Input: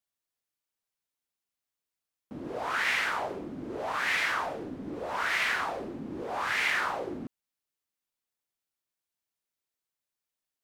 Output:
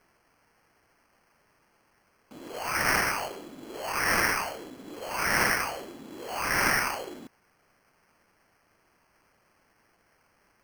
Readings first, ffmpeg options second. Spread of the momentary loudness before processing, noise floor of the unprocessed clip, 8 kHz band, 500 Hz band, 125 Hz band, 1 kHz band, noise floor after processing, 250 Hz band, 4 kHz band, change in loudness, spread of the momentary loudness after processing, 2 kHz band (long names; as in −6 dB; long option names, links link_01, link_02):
13 LU, below −85 dBFS, +11.5 dB, +1.5 dB, +6.0 dB, +2.0 dB, −68 dBFS, +0.5 dB, +1.5 dB, +3.0 dB, 19 LU, +1.5 dB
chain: -af "aemphasis=mode=production:type=riaa,acrusher=samples=12:mix=1:aa=0.000001"